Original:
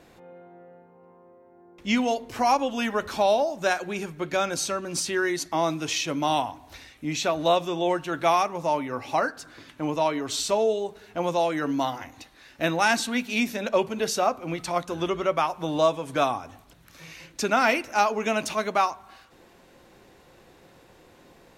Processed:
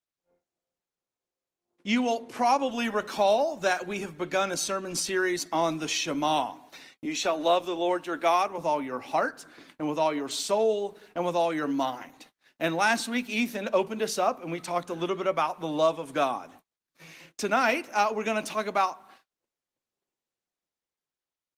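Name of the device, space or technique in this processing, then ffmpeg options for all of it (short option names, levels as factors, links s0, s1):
video call: -filter_complex "[0:a]asettb=1/sr,asplit=3[s0][s1][s2];[s0]atrim=end=7.054[s3];[s1]atrim=start=7.05:end=8.58,asetpts=PTS-STARTPTS,afade=t=in:d=0.004:c=qsin,afade=t=out:st=1.526:d=0.004:c=qsin,highpass=f=210:w=0.5412,highpass=f=210:w=1.3066[s4];[s2]atrim=start=8.576[s5];[s3][s4]acrossfade=d=0.004:c1=hsin:c2=qsin[s6];[s6][s5]acrossfade=d=0.004:c1=qsin:c2=hsin,highpass=f=160:w=0.5412,highpass=f=160:w=1.3066,dynaudnorm=f=210:g=11:m=2.11,agate=range=0.01:threshold=0.00708:ratio=16:detection=peak,volume=0.422" -ar 48000 -c:a libopus -b:a 24k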